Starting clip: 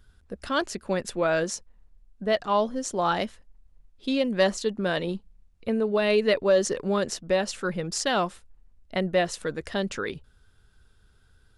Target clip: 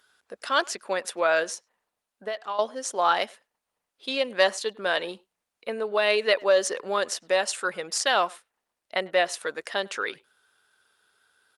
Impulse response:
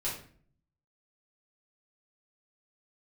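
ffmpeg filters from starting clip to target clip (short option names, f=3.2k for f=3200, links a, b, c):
-filter_complex "[0:a]highpass=640,asettb=1/sr,asplit=3[a][b][c];[a]atrim=end=1.434[d];[b]atrim=start=1.43:end=2.59,asetpts=PTS-STARTPTS,afade=t=in:d=0.004:c=qsin,afade=t=out:st=1.156:d=0.004:c=qsin,acompressor=threshold=-33dB:ratio=12[e];[c]atrim=start=2.586[f];[d][e]acrossfade=d=0.004:c1=hsin:c2=qsin[g];[g][f]acrossfade=d=0.004:c1=qsin:c2=hsin,asplit=3[h][i][j];[h]afade=t=out:st=7.19:d=0.02[k];[i]equalizer=f=7.9k:w=1.6:g=7,afade=t=in:st=7.19:d=0.02,afade=t=out:st=7.87:d=0.02[l];[j]afade=t=in:st=7.87:d=0.02[m];[k][l][m]amix=inputs=3:normalize=0,asplit=2[n][o];[o]adelay=100,highpass=300,lowpass=3.4k,asoftclip=type=hard:threshold=-19dB,volume=-25dB[p];[n][p]amix=inputs=2:normalize=0,volume=4.5dB" -ar 48000 -c:a libopus -b:a 48k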